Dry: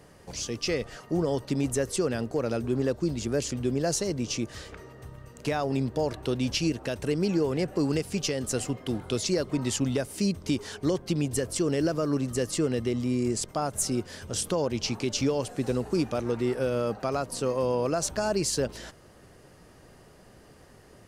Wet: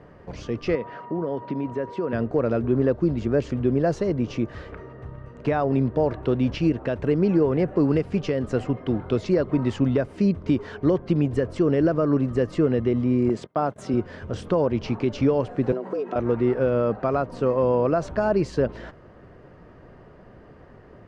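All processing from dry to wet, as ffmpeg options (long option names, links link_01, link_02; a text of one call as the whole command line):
ffmpeg -i in.wav -filter_complex "[0:a]asettb=1/sr,asplit=3[link_01][link_02][link_03];[link_01]atrim=end=0.754[link_04];[link_02]atrim=start=0.75:end=2.13,asetpts=PTS-STARTPTS,afade=type=in:duration=0.004:curve=qsin,afade=type=out:start_time=1.376:duration=0.004:curve=qsin,acompressor=threshold=-30dB:ratio=2.5:attack=3.2:release=140:knee=1:detection=peak,highpass=160,lowpass=4000,aeval=exprs='val(0)+0.00631*sin(2*PI*960*n/s)':channel_layout=same[link_05];[link_03]atrim=start=2.126[link_06];[link_04][link_05]acrossfade=duration=0.004:curve1=hsin:curve2=qsin[link_07];[link_07][link_06]acrossfade=duration=0.004:curve1=qsin:curve2=hsin,asettb=1/sr,asplit=3[link_08][link_09][link_10];[link_08]atrim=end=13.294[link_11];[link_09]atrim=start=13.29:end=13.94,asetpts=PTS-STARTPTS,afade=type=in:duration=0.004:curve=qsin,afade=type=out:start_time=0.646:duration=0.004:curve=qsin,agate=range=-24dB:threshold=-39dB:ratio=16:release=100:detection=peak,highpass=140,equalizer=frequency=3400:width=3.5:gain=5[link_12];[link_10]atrim=start=13.936[link_13];[link_11][link_12]acrossfade=duration=0.004:curve1=hsin:curve2=qsin[link_14];[link_14][link_13]acrossfade=duration=0.004:curve1=qsin:curve2=hsin,asettb=1/sr,asplit=3[link_15][link_16][link_17];[link_15]atrim=end=15.724[link_18];[link_16]atrim=start=15.72:end=16.16,asetpts=PTS-STARTPTS,afade=type=in:duration=0.004:curve=qsin,afade=type=out:start_time=0.436:duration=0.004:curve=qsin,aecho=1:1:3.4:0.45,atrim=end_sample=19404,acompressor=threshold=-29dB:ratio=12:attack=3.2:release=140:knee=1:detection=peak,afreqshift=130[link_19];[link_17]atrim=start=16.156[link_20];[link_18][link_19]acrossfade=duration=0.004:curve1=hsin:curve2=qsin[link_21];[link_21][link_20]acrossfade=duration=0.004:curve1=qsin:curve2=hsin,lowpass=1700,bandreject=frequency=810:width=17,volume=6dB" out.wav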